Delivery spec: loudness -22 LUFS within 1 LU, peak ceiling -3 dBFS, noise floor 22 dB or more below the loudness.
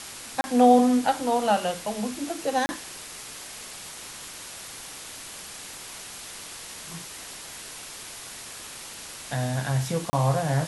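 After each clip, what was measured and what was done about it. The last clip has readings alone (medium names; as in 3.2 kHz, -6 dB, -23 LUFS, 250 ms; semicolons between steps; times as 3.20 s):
dropouts 3; longest dropout 30 ms; noise floor -41 dBFS; noise floor target -50 dBFS; loudness -28.0 LUFS; peak level -7.5 dBFS; loudness target -22.0 LUFS
-> interpolate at 0.41/2.66/10.10 s, 30 ms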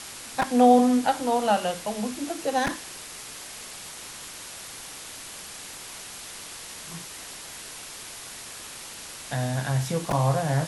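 dropouts 0; noise floor -41 dBFS; noise floor target -50 dBFS
-> noise reduction 9 dB, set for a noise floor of -41 dBFS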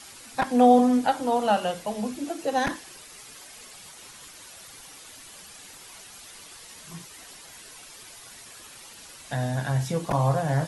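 noise floor -47 dBFS; loudness -24.0 LUFS; peak level -7.5 dBFS; loudness target -22.0 LUFS
-> trim +2 dB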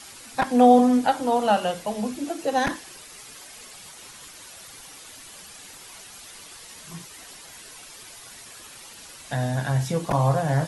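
loudness -22.0 LUFS; peak level -5.5 dBFS; noise floor -45 dBFS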